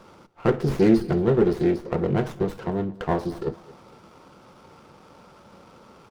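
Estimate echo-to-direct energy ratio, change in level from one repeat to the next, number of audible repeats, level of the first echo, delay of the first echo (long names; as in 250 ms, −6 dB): −21.0 dB, −9.0 dB, 2, −21.5 dB, 225 ms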